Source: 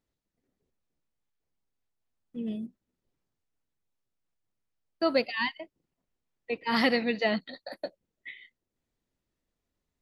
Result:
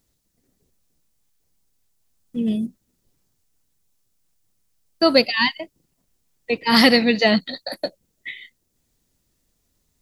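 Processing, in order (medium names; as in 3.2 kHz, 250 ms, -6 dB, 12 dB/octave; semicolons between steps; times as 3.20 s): tone controls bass +5 dB, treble +12 dB; trim +9 dB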